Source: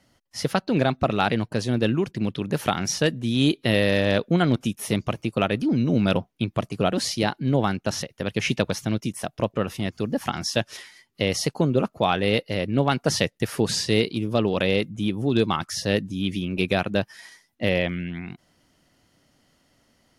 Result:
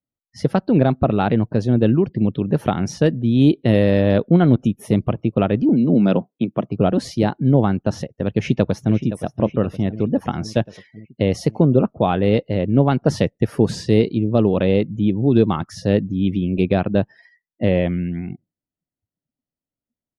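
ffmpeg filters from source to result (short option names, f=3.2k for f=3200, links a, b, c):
-filter_complex "[0:a]asettb=1/sr,asplit=3[a][b][c];[a]atrim=end=5.694[d];[b]atrim=start=5.69:end=6.69,asetpts=PTS-STARTPTS,afade=t=in:d=0.004:c=qsin,afade=t=out:st=0.996:d=0.004:c=qsin,highpass=f=160:w=0.5412,highpass=f=160:w=1.3066[e];[c]atrim=start=6.686[f];[d][e]acrossfade=d=0.004:c1=hsin:c2=qsin[g];[g][f]acrossfade=d=0.004:c1=qsin:c2=hsin,asplit=2[h][i];[i]afade=t=in:st=8.32:d=0.01,afade=t=out:st=8.97:d=0.01,aecho=0:1:520|1040|1560|2080|2600|3120|3640|4160:0.237137|0.154139|0.100191|0.0651239|0.0423305|0.0275148|0.0178846|0.011625[j];[h][j]amix=inputs=2:normalize=0,afftdn=nr=35:nf=-44,tiltshelf=f=1.1k:g=8"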